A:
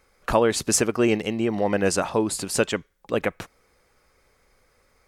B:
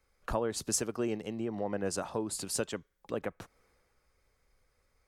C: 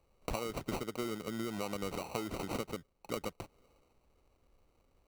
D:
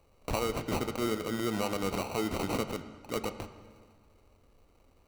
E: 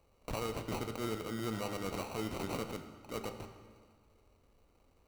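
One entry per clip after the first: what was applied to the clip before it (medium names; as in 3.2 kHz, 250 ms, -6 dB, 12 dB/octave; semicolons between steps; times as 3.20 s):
dynamic bell 2.3 kHz, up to -6 dB, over -42 dBFS, Q 1.5; compression 2:1, threshold -41 dBFS, peak gain reduction 14.5 dB; three bands expanded up and down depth 40%
compression, threshold -36 dBFS, peak gain reduction 10 dB; sample-rate reducer 1.7 kHz, jitter 0%; trim +2 dB
transient shaper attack -8 dB, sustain -4 dB; on a send at -8.5 dB: reverberation RT60 1.7 s, pre-delay 5 ms; on the sum: trim +8 dB
single-diode clipper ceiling -33 dBFS; feedback comb 56 Hz, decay 1.1 s, harmonics all, mix 60%; trim +2.5 dB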